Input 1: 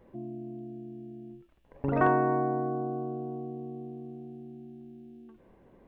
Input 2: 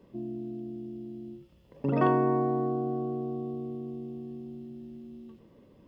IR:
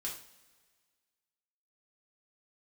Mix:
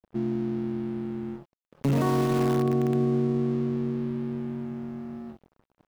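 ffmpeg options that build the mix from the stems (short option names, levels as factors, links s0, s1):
-filter_complex "[0:a]lowshelf=f=110:g=-10,aeval=exprs='(mod(16.8*val(0)+1,2)-1)/16.8':c=same,volume=0.596[s0];[1:a]volume=-1,adelay=5.2,volume=1.41,asplit=2[s1][s2];[s2]volume=0.0794[s3];[2:a]atrim=start_sample=2205[s4];[s3][s4]afir=irnorm=-1:irlink=0[s5];[s0][s1][s5]amix=inputs=3:normalize=0,equalizer=f=160:w=0.84:g=9,aeval=exprs='sgn(val(0))*max(abs(val(0))-0.0075,0)':c=same,alimiter=limit=0.141:level=0:latency=1:release=14"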